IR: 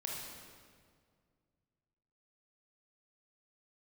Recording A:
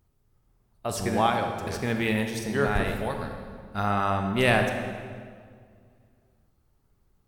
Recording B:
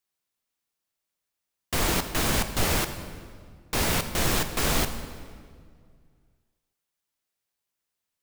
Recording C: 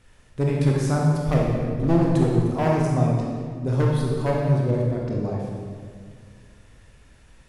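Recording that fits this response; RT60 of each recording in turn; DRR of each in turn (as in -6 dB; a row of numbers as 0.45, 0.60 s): C; 2.0, 2.0, 2.0 s; 4.5, 9.0, -2.5 dB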